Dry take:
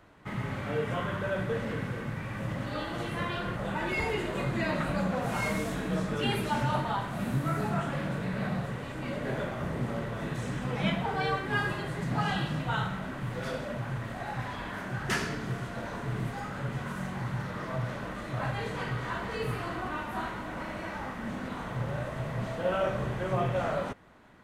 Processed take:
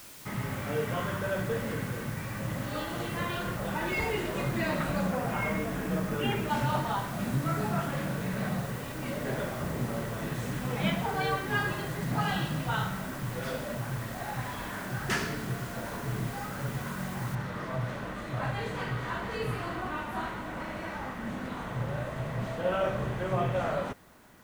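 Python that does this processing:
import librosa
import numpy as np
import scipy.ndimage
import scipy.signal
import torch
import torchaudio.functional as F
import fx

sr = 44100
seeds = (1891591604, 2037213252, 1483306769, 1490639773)

y = fx.savgol(x, sr, points=25, at=(5.1, 6.49), fade=0.02)
y = fx.noise_floor_step(y, sr, seeds[0], at_s=17.35, before_db=-49, after_db=-65, tilt_db=0.0)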